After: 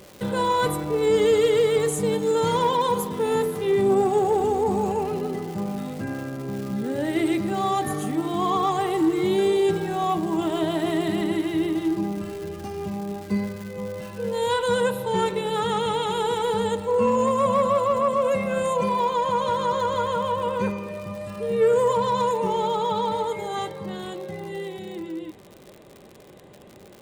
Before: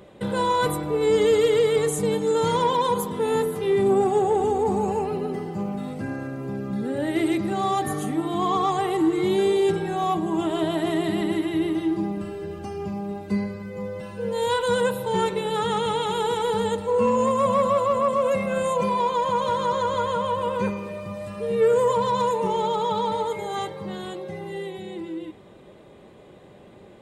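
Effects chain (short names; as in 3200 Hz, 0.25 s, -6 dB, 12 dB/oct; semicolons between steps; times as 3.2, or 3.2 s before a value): crackle 420/s -34 dBFS, from 14.36 s 78/s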